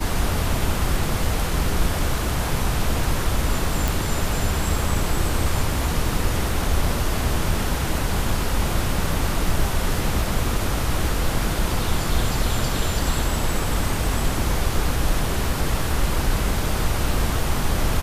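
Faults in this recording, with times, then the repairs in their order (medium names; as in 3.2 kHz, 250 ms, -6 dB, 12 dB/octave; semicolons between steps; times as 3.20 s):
3.88 s: pop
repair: de-click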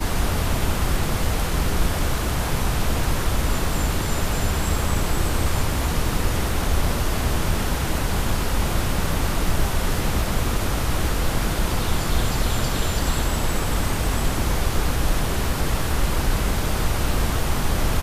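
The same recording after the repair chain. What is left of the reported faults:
nothing left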